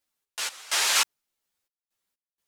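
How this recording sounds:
sample-and-hold tremolo 4.2 Hz, depth 95%
a shimmering, thickened sound

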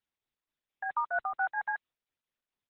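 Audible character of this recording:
tremolo triangle 4.4 Hz, depth 60%
Opus

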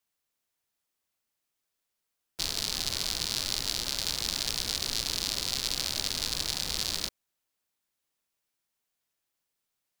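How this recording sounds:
background noise floor −84 dBFS
spectral slope −1.5 dB per octave

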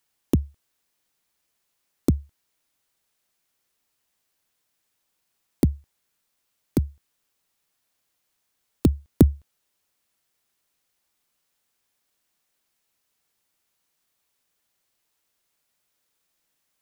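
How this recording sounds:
background noise floor −76 dBFS
spectral slope −7.0 dB per octave

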